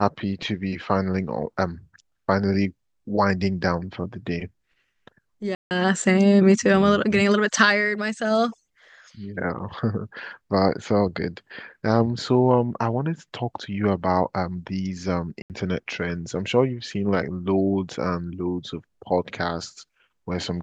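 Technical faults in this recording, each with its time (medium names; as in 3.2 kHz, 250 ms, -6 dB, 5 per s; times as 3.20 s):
5.55–5.71 s: dropout 159 ms
15.42–15.50 s: dropout 78 ms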